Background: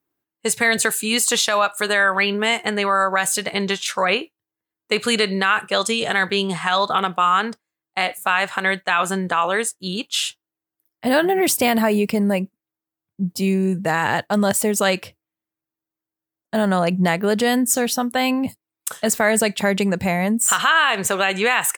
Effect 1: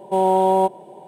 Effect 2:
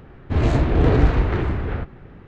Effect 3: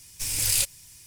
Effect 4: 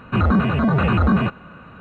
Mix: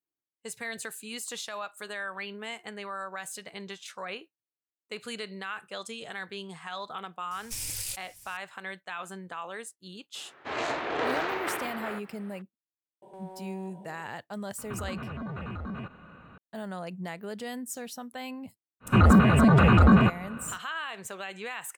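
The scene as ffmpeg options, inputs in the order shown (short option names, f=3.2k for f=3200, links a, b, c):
-filter_complex "[4:a]asplit=2[a][b];[0:a]volume=-19dB[c];[3:a]alimiter=limit=-19dB:level=0:latency=1:release=402[d];[2:a]highpass=740[e];[1:a]acompressor=threshold=-30dB:ratio=8:attack=0.11:release=38:knee=1:detection=peak[f];[a]acompressor=threshold=-25dB:ratio=6:attack=3.2:release=140:knee=1:detection=peak[g];[d]atrim=end=1.06,asetpts=PTS-STARTPTS,volume=-4.5dB,afade=t=in:d=0.004:c=hsin,afade=t=out:st=1.056:d=0.004:c=hsin,adelay=7310[h];[e]atrim=end=2.27,asetpts=PTS-STARTPTS,volume=-0.5dB,afade=t=in:d=0.004:c=hsin,afade=t=out:st=2.266:d=0.004:c=hsin,adelay=10150[i];[f]atrim=end=1.07,asetpts=PTS-STARTPTS,volume=-11.5dB,afade=t=in:d=0.004:c=hsin,afade=t=out:st=1.066:d=0.004:c=hsin,adelay=13020[j];[g]atrim=end=1.8,asetpts=PTS-STARTPTS,volume=-9dB,afade=t=in:d=0.004:c=hsin,afade=t=out:st=1.796:d=0.004:c=hsin,adelay=14580[k];[b]atrim=end=1.8,asetpts=PTS-STARTPTS,volume=-0.5dB,afade=t=in:d=0.1,afade=t=out:st=1.7:d=0.1,adelay=18800[l];[c][h][i][j][k][l]amix=inputs=6:normalize=0"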